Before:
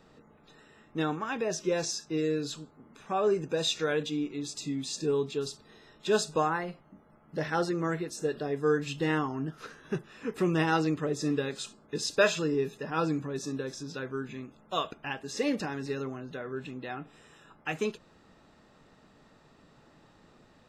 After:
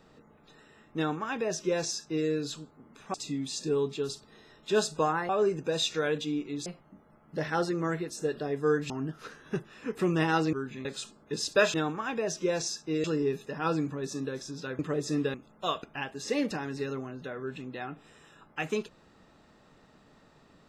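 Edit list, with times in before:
0.97–2.27 s: copy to 12.36 s
3.14–4.51 s: move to 6.66 s
8.90–9.29 s: delete
10.92–11.47 s: swap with 14.11–14.43 s

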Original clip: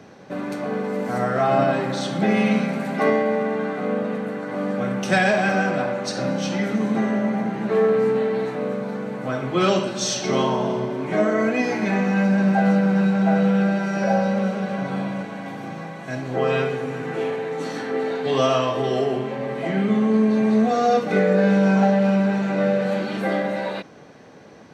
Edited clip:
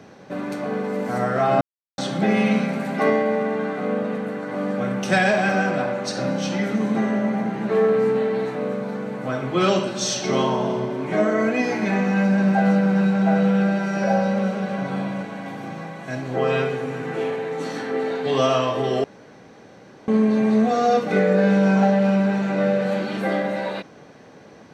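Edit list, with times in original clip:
1.61–1.98 s: mute
19.04–20.08 s: room tone

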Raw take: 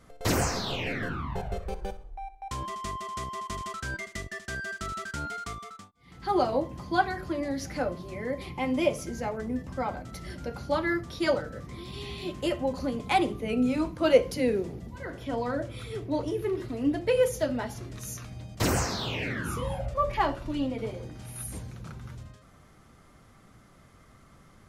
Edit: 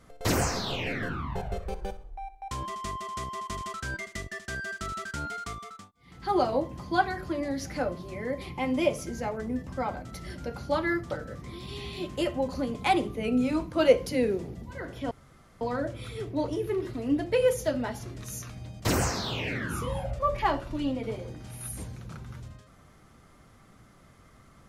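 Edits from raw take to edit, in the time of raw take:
11.11–11.36 s: delete
15.36 s: insert room tone 0.50 s

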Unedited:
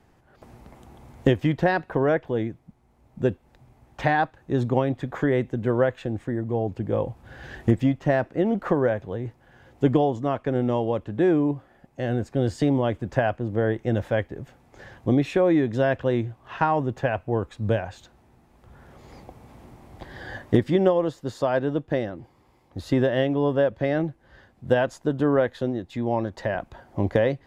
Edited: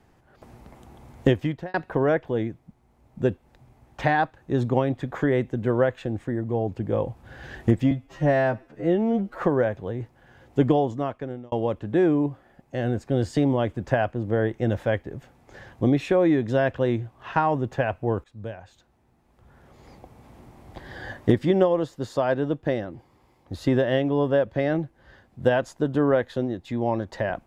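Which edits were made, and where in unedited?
1.32–1.74 s: fade out
7.91–8.66 s: stretch 2×
10.13–10.77 s: fade out
17.49–20.12 s: fade in, from -14.5 dB

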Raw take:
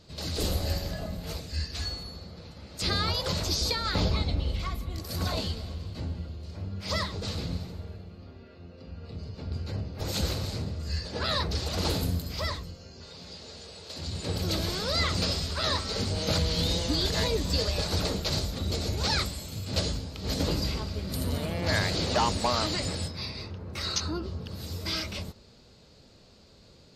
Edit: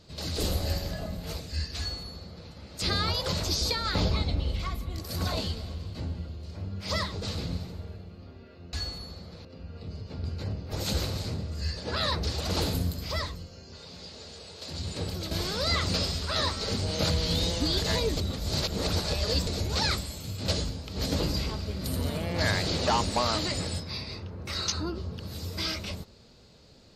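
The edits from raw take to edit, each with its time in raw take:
1.78–2.50 s: copy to 8.73 s
14.19–14.59 s: fade out, to -9 dB
17.45–18.75 s: reverse

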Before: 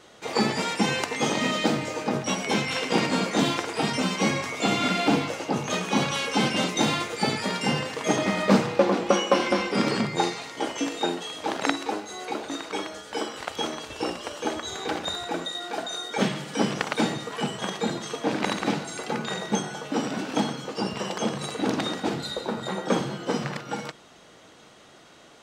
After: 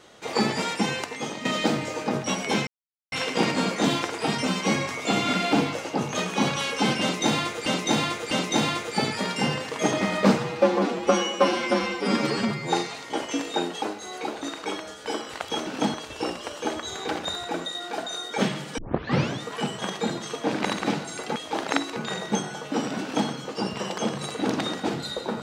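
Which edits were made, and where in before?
0.67–1.45 s: fade out, to -11.5 dB
2.67 s: insert silence 0.45 s
6.56–7.21 s: loop, 3 plays
8.63–10.19 s: stretch 1.5×
11.29–11.89 s: move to 19.16 s
16.58 s: tape start 0.64 s
20.22–20.49 s: copy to 13.74 s

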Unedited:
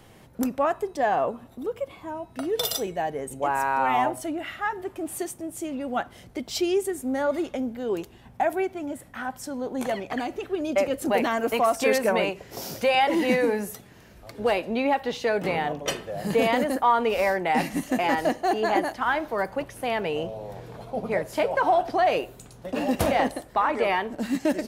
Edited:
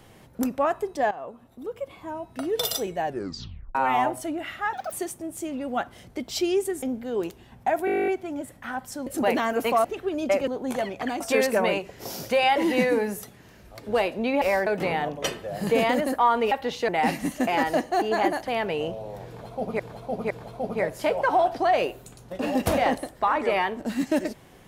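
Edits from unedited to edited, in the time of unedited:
1.11–2.10 s: fade in, from -17 dB
3.05 s: tape stop 0.70 s
4.73–5.12 s: speed 200%
7.02–7.56 s: delete
8.59 s: stutter 0.02 s, 12 plays
9.58–10.31 s: swap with 10.94–11.72 s
14.93–15.30 s: swap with 17.15–17.40 s
18.99–19.83 s: delete
20.64–21.15 s: loop, 3 plays

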